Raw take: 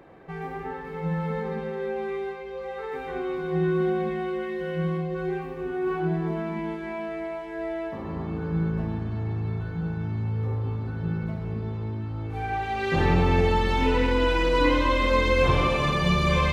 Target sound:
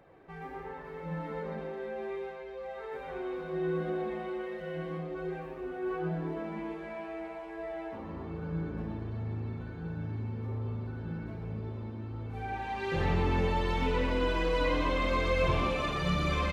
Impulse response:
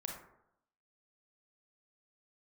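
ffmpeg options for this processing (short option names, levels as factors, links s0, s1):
-filter_complex "[0:a]flanger=delay=1.3:depth=2.7:regen=-42:speed=1.3:shape=triangular,asplit=5[s0][s1][s2][s3][s4];[s1]adelay=122,afreqshift=130,volume=0.266[s5];[s2]adelay=244,afreqshift=260,volume=0.0955[s6];[s3]adelay=366,afreqshift=390,volume=0.0347[s7];[s4]adelay=488,afreqshift=520,volume=0.0124[s8];[s0][s5][s6][s7][s8]amix=inputs=5:normalize=0,volume=0.631"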